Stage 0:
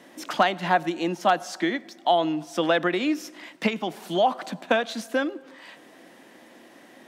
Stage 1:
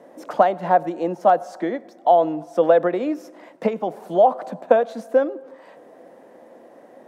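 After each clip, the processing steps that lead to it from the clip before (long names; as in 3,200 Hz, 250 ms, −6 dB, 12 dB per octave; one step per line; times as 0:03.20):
drawn EQ curve 340 Hz 0 dB, 490 Hz +11 dB, 3,100 Hz −14 dB, 9,100 Hz −9 dB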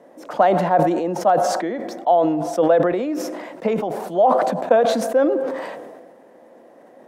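level that may fall only so fast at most 35 dB per second
level −1.5 dB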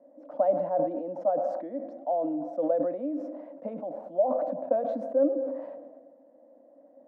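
pair of resonant band-passes 400 Hz, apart 0.99 octaves
level −3.5 dB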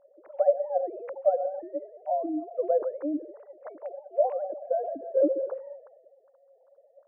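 three sine waves on the formant tracks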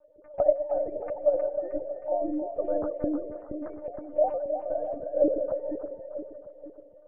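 one-pitch LPC vocoder at 8 kHz 300 Hz
echo with a time of its own for lows and highs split 500 Hz, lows 472 ms, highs 313 ms, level −7.5 dB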